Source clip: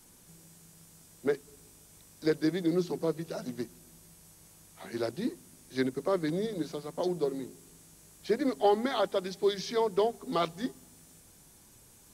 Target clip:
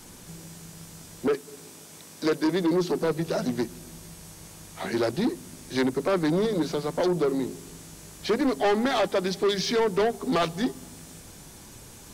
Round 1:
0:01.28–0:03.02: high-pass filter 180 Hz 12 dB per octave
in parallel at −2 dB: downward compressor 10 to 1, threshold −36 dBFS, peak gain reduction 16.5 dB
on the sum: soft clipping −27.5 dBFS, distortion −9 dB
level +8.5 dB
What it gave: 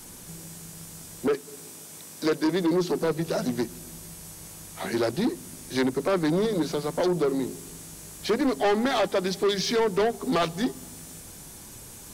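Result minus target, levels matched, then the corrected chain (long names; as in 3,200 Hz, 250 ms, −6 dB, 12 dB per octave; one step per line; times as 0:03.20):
8,000 Hz band +3.0 dB
0:01.28–0:03.02: high-pass filter 180 Hz 12 dB per octave
in parallel at −2 dB: downward compressor 10 to 1, threshold −36 dBFS, peak gain reduction 16.5 dB + low-pass filter 7,700 Hz 12 dB per octave
on the sum: soft clipping −27.5 dBFS, distortion −9 dB
level +8.5 dB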